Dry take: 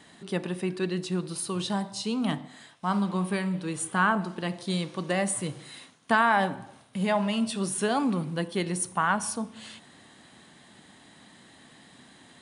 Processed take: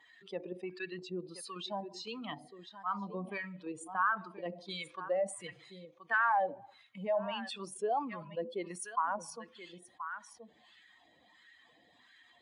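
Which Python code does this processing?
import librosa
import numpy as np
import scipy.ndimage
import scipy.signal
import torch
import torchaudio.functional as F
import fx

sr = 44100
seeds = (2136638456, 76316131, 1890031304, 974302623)

p1 = fx.bin_expand(x, sr, power=2.0)
p2 = fx.level_steps(p1, sr, step_db=18)
p3 = p1 + F.gain(torch.from_numpy(p2), -0.5).numpy()
p4 = fx.highpass(p3, sr, hz=300.0, slope=6)
p5 = p4 + 10.0 ** (-21.5 / 20.0) * np.pad(p4, (int(1028 * sr / 1000.0), 0))[:len(p4)]
p6 = fx.wah_lfo(p5, sr, hz=1.5, low_hz=540.0, high_hz=1600.0, q=2.7)
p7 = fx.env_flatten(p6, sr, amount_pct=50)
y = F.gain(torch.from_numpy(p7), -3.0).numpy()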